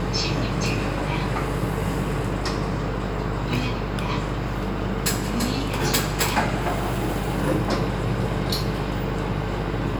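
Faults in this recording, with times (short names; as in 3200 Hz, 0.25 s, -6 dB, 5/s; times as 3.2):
buzz 50 Hz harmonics 23 -29 dBFS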